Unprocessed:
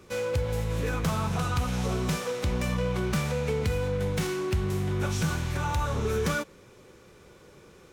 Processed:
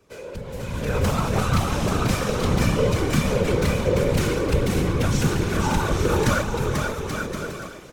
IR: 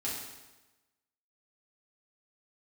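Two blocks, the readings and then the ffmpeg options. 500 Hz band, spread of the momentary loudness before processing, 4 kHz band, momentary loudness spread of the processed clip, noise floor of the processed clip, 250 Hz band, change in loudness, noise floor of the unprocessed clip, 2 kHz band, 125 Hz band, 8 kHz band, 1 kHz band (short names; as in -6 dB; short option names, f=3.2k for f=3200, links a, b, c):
+6.5 dB, 2 LU, +7.0 dB, 9 LU, -38 dBFS, +7.5 dB, +6.0 dB, -54 dBFS, +6.5 dB, +5.5 dB, +7.0 dB, +7.0 dB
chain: -af "aecho=1:1:490|833|1073|1241|1359:0.631|0.398|0.251|0.158|0.1,dynaudnorm=f=140:g=11:m=16.5dB,afftfilt=real='hypot(re,im)*cos(2*PI*random(0))':imag='hypot(re,im)*sin(2*PI*random(1))':win_size=512:overlap=0.75,volume=-1.5dB"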